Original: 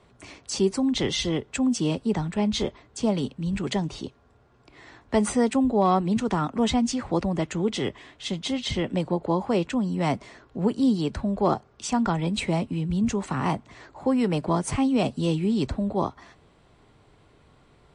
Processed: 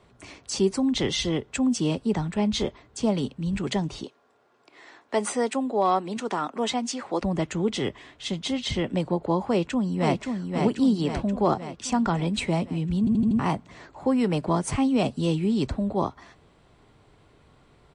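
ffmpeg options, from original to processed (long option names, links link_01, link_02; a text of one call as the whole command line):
ffmpeg -i in.wav -filter_complex "[0:a]asettb=1/sr,asplit=3[link_01][link_02][link_03];[link_01]atrim=end=4.044[link_04];[link_02]atrim=start=4.04:end=7.22,asetpts=PTS-STARTPTS,afade=type=in:duration=0.004:curve=qsin,afade=type=out:start_time=3.176:duration=0.004:curve=qsin,highpass=350[link_05];[link_03]atrim=start=7.216[link_06];[link_04][link_05]acrossfade=duration=0.004:curve1=hsin:curve2=qsin[link_07];[link_07][link_06]acrossfade=duration=0.004:curve1=qsin:curve2=hsin,asplit=2[link_08][link_09];[link_09]afade=type=in:start_time=9.47:duration=0.01,afade=type=out:start_time=10.15:duration=0.01,aecho=0:1:530|1060|1590|2120|2650|3180|3710|4240|4770:0.595662|0.357397|0.214438|0.128663|0.0771978|0.0463187|0.0277912|0.0166747|0.0100048[link_10];[link_08][link_10]amix=inputs=2:normalize=0,asplit=6[link_11][link_12][link_13][link_14][link_15][link_16];[link_11]atrim=end=13.072[link_17];[link_12]atrim=start=12.988:end=13.072[link_18];[link_13]atrim=start=12.988:end=13.072[link_19];[link_14]atrim=start=12.988:end=13.072[link_20];[link_15]atrim=start=12.988:end=13.072[link_21];[link_16]atrim=start=13.388[link_22];[link_17][link_18]acrossfade=duration=0.004:curve1=hsin:curve2=hsin[link_23];[link_23][link_19]acrossfade=duration=0.004:curve1=hsin:curve2=hsin[link_24];[link_24][link_20]acrossfade=duration=0.004:curve1=hsin:curve2=hsin[link_25];[link_25][link_21]acrossfade=duration=0.004:curve1=hsin:curve2=hsin[link_26];[link_26][link_22]acrossfade=duration=0.004:curve1=hsin:curve2=hsin" out.wav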